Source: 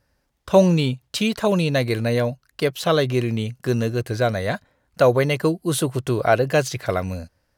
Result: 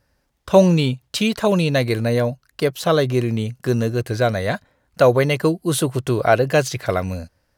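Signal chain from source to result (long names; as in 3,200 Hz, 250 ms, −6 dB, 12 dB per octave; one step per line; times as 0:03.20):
0:01.92–0:03.99: dynamic equaliser 2,800 Hz, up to −4 dB, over −39 dBFS, Q 1.1
level +2 dB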